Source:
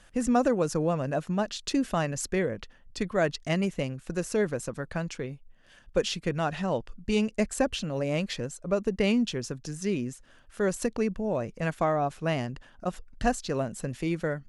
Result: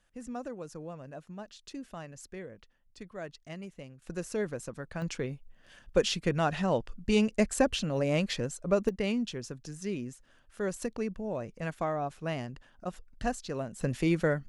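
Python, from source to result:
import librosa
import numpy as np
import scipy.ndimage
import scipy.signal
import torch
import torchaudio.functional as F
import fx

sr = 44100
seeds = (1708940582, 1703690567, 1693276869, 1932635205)

y = fx.gain(x, sr, db=fx.steps((0.0, -15.5), (4.02, -6.0), (5.02, 0.5), (8.89, -6.0), (13.81, 2.5)))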